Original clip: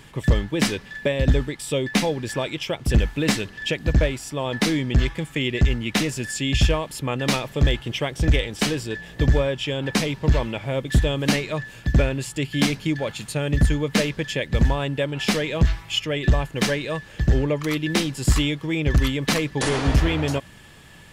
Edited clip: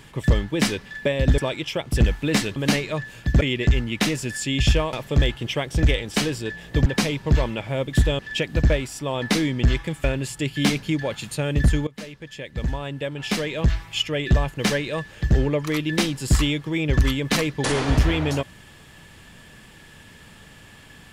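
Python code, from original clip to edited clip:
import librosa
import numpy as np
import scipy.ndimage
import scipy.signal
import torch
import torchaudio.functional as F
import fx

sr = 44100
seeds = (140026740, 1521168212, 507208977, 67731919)

y = fx.edit(x, sr, fx.cut(start_s=1.38, length_s=0.94),
    fx.swap(start_s=3.5, length_s=1.85, other_s=11.16, other_length_s=0.85),
    fx.cut(start_s=6.87, length_s=0.51),
    fx.cut(start_s=9.31, length_s=0.52),
    fx.fade_in_from(start_s=13.84, length_s=2.15, floor_db=-20.0), tone=tone)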